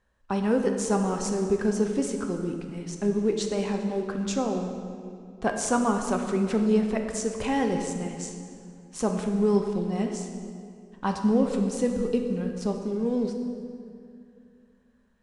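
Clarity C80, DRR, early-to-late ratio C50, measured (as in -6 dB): 6.5 dB, 3.5 dB, 5.5 dB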